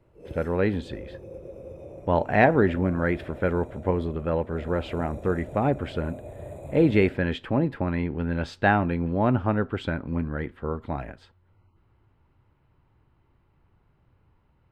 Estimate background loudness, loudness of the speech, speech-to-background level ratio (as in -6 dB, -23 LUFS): -42.5 LUFS, -26.0 LUFS, 16.5 dB